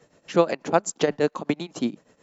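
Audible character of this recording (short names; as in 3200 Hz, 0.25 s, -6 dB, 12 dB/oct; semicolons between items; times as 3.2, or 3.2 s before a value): tremolo triangle 8.2 Hz, depth 85%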